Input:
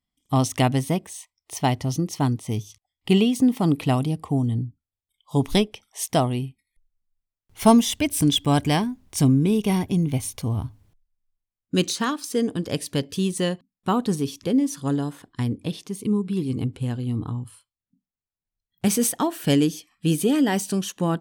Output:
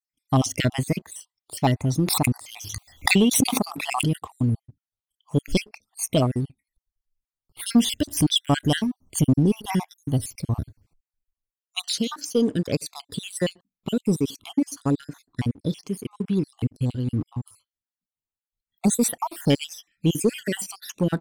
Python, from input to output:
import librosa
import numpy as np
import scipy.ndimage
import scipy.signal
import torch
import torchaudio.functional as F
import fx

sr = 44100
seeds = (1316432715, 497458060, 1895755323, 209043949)

y = fx.spec_dropout(x, sr, seeds[0], share_pct=53)
y = fx.leveller(y, sr, passes=1)
y = fx.pre_swell(y, sr, db_per_s=41.0, at=(2.0, 4.17), fade=0.02)
y = F.gain(torch.from_numpy(y), -1.0).numpy()